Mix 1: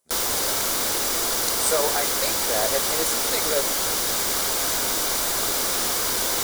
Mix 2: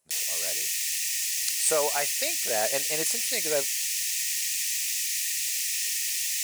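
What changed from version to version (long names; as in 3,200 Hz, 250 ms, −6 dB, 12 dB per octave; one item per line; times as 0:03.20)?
background: add Chebyshev high-pass with heavy ripple 1,800 Hz, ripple 6 dB
reverb: off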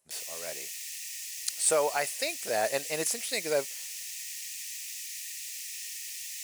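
background −11.0 dB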